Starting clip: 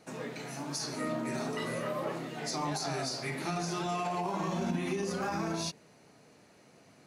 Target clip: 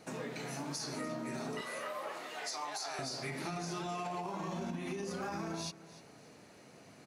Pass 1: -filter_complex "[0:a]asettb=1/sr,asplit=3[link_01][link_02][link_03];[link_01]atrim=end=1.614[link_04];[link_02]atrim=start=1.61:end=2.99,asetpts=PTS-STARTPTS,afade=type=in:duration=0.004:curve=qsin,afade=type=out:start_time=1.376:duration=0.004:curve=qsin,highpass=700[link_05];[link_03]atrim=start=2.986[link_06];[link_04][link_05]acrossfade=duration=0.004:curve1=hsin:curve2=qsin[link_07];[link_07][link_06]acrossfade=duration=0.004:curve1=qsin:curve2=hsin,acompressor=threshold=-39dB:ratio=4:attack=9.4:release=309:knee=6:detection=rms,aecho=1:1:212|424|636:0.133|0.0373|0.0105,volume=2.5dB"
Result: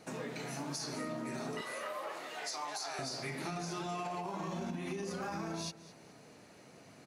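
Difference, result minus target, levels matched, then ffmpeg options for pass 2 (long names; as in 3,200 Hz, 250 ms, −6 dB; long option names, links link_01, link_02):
echo 84 ms early
-filter_complex "[0:a]asettb=1/sr,asplit=3[link_01][link_02][link_03];[link_01]atrim=end=1.614[link_04];[link_02]atrim=start=1.61:end=2.99,asetpts=PTS-STARTPTS,afade=type=in:duration=0.004:curve=qsin,afade=type=out:start_time=1.376:duration=0.004:curve=qsin,highpass=700[link_05];[link_03]atrim=start=2.986[link_06];[link_04][link_05]acrossfade=duration=0.004:curve1=hsin:curve2=qsin[link_07];[link_07][link_06]acrossfade=duration=0.004:curve1=qsin:curve2=hsin,acompressor=threshold=-39dB:ratio=4:attack=9.4:release=309:knee=6:detection=rms,aecho=1:1:296|592|888:0.133|0.0373|0.0105,volume=2.5dB"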